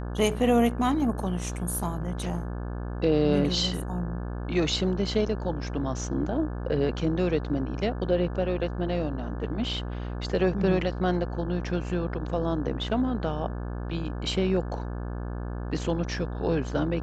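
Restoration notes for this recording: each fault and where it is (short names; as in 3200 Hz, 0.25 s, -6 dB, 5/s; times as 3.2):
buzz 60 Hz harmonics 29 -33 dBFS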